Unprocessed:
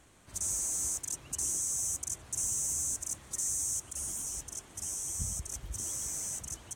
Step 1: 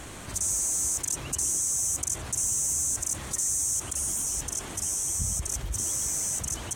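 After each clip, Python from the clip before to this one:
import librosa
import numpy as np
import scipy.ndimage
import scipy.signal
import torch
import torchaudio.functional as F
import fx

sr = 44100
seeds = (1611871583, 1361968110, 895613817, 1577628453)

y = fx.env_flatten(x, sr, amount_pct=50)
y = y * librosa.db_to_amplitude(5.0)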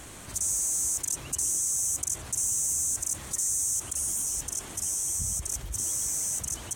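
y = fx.high_shelf(x, sr, hz=6700.0, db=7.0)
y = y * librosa.db_to_amplitude(-4.5)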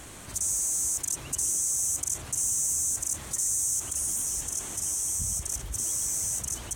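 y = x + 10.0 ** (-10.5 / 20.0) * np.pad(x, (int(1023 * sr / 1000.0), 0))[:len(x)]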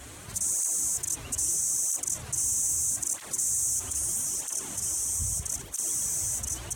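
y = fx.flanger_cancel(x, sr, hz=0.78, depth_ms=6.4)
y = y * librosa.db_to_amplitude(3.0)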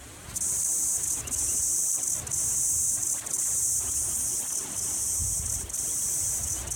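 y = x + 10.0 ** (-4.0 / 20.0) * np.pad(x, (int(238 * sr / 1000.0), 0))[:len(x)]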